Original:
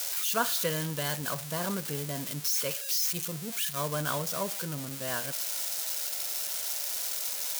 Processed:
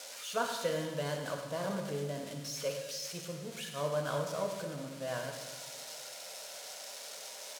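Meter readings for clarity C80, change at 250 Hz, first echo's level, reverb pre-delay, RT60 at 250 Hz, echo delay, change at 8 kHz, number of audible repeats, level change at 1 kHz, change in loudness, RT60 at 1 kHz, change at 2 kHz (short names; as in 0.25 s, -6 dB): 6.5 dB, -4.5 dB, -11.0 dB, 5 ms, 1.8 s, 0.103 s, -11.5 dB, 1, -4.0 dB, -8.0 dB, 1.3 s, -6.0 dB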